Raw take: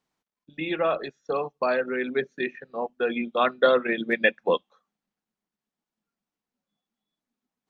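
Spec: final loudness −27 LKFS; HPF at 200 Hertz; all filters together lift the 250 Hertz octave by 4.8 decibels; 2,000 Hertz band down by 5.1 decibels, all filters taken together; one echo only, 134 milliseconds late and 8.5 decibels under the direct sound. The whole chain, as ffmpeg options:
ffmpeg -i in.wav -af "highpass=200,equalizer=frequency=250:width_type=o:gain=7.5,equalizer=frequency=2000:width_type=o:gain=-6.5,aecho=1:1:134:0.376,volume=-2dB" out.wav

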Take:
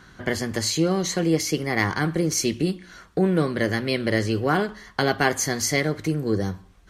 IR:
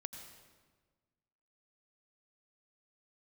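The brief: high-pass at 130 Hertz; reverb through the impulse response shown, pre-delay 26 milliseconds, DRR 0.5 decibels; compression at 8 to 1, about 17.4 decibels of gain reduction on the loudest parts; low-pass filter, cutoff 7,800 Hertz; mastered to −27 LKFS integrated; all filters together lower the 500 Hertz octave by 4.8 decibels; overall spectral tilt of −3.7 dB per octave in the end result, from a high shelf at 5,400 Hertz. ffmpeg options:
-filter_complex "[0:a]highpass=130,lowpass=7800,equalizer=frequency=500:width_type=o:gain=-6.5,highshelf=frequency=5400:gain=4,acompressor=threshold=-37dB:ratio=8,asplit=2[link_01][link_02];[1:a]atrim=start_sample=2205,adelay=26[link_03];[link_02][link_03]afir=irnorm=-1:irlink=0,volume=2.5dB[link_04];[link_01][link_04]amix=inputs=2:normalize=0,volume=10dB"

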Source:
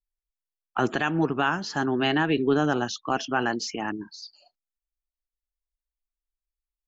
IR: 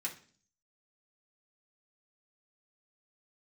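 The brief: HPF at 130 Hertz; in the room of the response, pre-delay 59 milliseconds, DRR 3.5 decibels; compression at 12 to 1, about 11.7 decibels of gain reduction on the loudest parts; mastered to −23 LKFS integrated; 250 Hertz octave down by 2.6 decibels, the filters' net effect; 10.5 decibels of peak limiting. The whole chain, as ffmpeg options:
-filter_complex "[0:a]highpass=130,equalizer=frequency=250:width_type=o:gain=-3,acompressor=threshold=-31dB:ratio=12,alimiter=level_in=5dB:limit=-24dB:level=0:latency=1,volume=-5dB,asplit=2[link_01][link_02];[1:a]atrim=start_sample=2205,adelay=59[link_03];[link_02][link_03]afir=irnorm=-1:irlink=0,volume=-4.5dB[link_04];[link_01][link_04]amix=inputs=2:normalize=0,volume=15dB"

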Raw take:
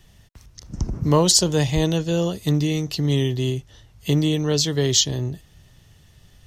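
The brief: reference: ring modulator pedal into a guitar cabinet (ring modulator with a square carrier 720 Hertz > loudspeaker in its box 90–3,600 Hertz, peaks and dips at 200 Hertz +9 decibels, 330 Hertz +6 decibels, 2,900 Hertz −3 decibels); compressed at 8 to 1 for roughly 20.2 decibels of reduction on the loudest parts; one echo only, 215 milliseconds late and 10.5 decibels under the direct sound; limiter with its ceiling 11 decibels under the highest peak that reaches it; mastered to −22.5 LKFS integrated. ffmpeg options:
ffmpeg -i in.wav -af "acompressor=threshold=-34dB:ratio=8,alimiter=level_in=8dB:limit=-24dB:level=0:latency=1,volume=-8dB,aecho=1:1:215:0.299,aeval=exprs='val(0)*sgn(sin(2*PI*720*n/s))':channel_layout=same,highpass=90,equalizer=frequency=200:width_type=q:width=4:gain=9,equalizer=frequency=330:width_type=q:width=4:gain=6,equalizer=frequency=2900:width_type=q:width=4:gain=-3,lowpass=frequency=3600:width=0.5412,lowpass=frequency=3600:width=1.3066,volume=18dB" out.wav

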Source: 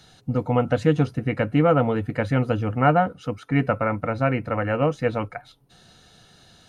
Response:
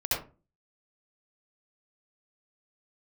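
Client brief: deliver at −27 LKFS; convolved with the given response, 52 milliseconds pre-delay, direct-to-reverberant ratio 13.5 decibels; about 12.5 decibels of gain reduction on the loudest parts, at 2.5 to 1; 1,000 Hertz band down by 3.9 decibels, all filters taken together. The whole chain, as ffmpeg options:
-filter_complex "[0:a]equalizer=frequency=1000:width_type=o:gain=-6.5,acompressor=threshold=-34dB:ratio=2.5,asplit=2[link_01][link_02];[1:a]atrim=start_sample=2205,adelay=52[link_03];[link_02][link_03]afir=irnorm=-1:irlink=0,volume=-22dB[link_04];[link_01][link_04]amix=inputs=2:normalize=0,volume=7dB"

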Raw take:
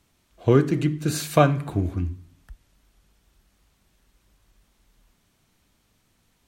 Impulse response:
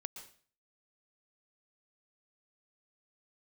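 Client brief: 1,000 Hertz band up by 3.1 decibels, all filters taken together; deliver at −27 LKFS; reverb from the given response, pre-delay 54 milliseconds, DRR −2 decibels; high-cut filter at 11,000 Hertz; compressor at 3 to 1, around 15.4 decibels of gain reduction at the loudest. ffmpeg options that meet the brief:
-filter_complex "[0:a]lowpass=11000,equalizer=frequency=1000:width_type=o:gain=4.5,acompressor=threshold=-32dB:ratio=3,asplit=2[link_01][link_02];[1:a]atrim=start_sample=2205,adelay=54[link_03];[link_02][link_03]afir=irnorm=-1:irlink=0,volume=5dB[link_04];[link_01][link_04]amix=inputs=2:normalize=0,volume=3.5dB"

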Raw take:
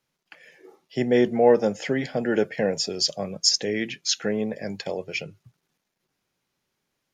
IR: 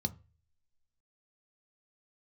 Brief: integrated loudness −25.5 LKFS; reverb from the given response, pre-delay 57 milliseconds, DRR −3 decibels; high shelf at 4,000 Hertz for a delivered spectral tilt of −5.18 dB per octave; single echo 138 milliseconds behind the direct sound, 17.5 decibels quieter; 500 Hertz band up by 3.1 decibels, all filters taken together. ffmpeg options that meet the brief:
-filter_complex "[0:a]equalizer=frequency=500:width_type=o:gain=3.5,highshelf=frequency=4000:gain=-3.5,aecho=1:1:138:0.133,asplit=2[link_01][link_02];[1:a]atrim=start_sample=2205,adelay=57[link_03];[link_02][link_03]afir=irnorm=-1:irlink=0,volume=1.5dB[link_04];[link_01][link_04]amix=inputs=2:normalize=0,volume=-11.5dB"

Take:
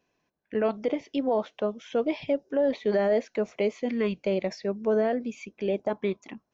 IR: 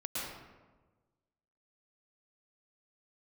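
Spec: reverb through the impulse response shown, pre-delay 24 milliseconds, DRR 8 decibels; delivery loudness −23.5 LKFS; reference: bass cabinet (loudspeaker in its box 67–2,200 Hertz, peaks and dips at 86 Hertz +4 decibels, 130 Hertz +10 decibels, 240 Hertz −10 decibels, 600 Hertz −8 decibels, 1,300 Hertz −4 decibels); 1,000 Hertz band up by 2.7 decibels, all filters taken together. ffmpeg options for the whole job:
-filter_complex "[0:a]equalizer=frequency=1000:width_type=o:gain=7,asplit=2[link_01][link_02];[1:a]atrim=start_sample=2205,adelay=24[link_03];[link_02][link_03]afir=irnorm=-1:irlink=0,volume=-11.5dB[link_04];[link_01][link_04]amix=inputs=2:normalize=0,highpass=frequency=67:width=0.5412,highpass=frequency=67:width=1.3066,equalizer=frequency=86:width_type=q:width=4:gain=4,equalizer=frequency=130:width_type=q:width=4:gain=10,equalizer=frequency=240:width_type=q:width=4:gain=-10,equalizer=frequency=600:width_type=q:width=4:gain=-8,equalizer=frequency=1300:width_type=q:width=4:gain=-4,lowpass=frequency=2200:width=0.5412,lowpass=frequency=2200:width=1.3066,volume=6.5dB"

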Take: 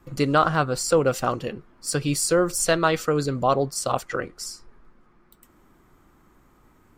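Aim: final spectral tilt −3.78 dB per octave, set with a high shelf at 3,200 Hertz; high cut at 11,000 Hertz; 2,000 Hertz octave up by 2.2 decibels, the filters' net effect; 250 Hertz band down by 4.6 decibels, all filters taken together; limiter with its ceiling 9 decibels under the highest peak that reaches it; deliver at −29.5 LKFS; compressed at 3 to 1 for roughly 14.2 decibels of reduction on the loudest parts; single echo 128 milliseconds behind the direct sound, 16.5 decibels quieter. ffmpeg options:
ffmpeg -i in.wav -af "lowpass=11000,equalizer=frequency=250:width_type=o:gain=-7,equalizer=frequency=2000:width_type=o:gain=6,highshelf=frequency=3200:gain=-8,acompressor=threshold=-35dB:ratio=3,alimiter=level_in=3dB:limit=-24dB:level=0:latency=1,volume=-3dB,aecho=1:1:128:0.15,volume=9dB" out.wav

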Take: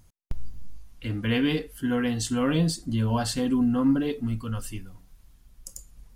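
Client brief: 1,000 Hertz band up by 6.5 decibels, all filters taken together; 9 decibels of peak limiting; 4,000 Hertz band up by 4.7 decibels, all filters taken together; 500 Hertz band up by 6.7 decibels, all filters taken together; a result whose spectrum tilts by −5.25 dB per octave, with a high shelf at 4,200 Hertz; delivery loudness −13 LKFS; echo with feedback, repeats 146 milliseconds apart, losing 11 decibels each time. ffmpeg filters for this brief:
ffmpeg -i in.wav -af "equalizer=frequency=500:width_type=o:gain=6,equalizer=frequency=1000:width_type=o:gain=6,equalizer=frequency=4000:width_type=o:gain=4,highshelf=frequency=4200:gain=3,alimiter=limit=-19dB:level=0:latency=1,aecho=1:1:146|292|438:0.282|0.0789|0.0221,volume=14.5dB" out.wav

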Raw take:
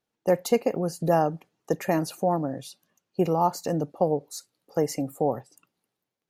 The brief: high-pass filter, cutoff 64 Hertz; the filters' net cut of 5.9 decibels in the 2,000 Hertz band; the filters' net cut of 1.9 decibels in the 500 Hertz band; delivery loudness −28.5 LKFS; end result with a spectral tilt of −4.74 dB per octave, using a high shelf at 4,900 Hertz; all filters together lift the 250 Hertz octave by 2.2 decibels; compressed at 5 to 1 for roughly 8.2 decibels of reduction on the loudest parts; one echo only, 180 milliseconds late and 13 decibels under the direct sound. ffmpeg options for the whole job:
ffmpeg -i in.wav -af "highpass=64,equalizer=frequency=250:width_type=o:gain=4.5,equalizer=frequency=500:width_type=o:gain=-3,equalizer=frequency=2000:width_type=o:gain=-8.5,highshelf=frequency=4900:gain=9,acompressor=threshold=-26dB:ratio=5,aecho=1:1:180:0.224,volume=4dB" out.wav

